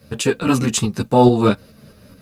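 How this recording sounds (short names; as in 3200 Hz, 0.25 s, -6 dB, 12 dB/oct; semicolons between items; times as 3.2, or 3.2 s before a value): tremolo saw up 4.7 Hz, depth 45%; a quantiser's noise floor 12-bit, dither none; a shimmering, thickened sound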